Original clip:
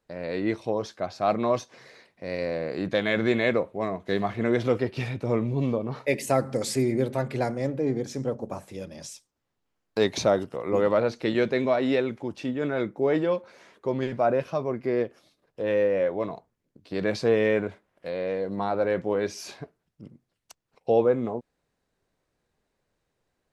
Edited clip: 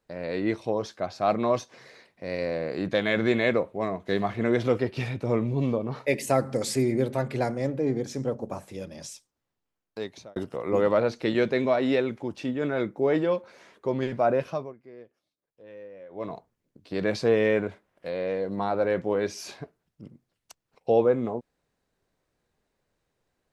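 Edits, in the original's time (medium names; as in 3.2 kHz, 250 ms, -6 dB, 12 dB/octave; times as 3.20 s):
9.10–10.36 s: fade out
14.49–16.34 s: dip -21 dB, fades 0.25 s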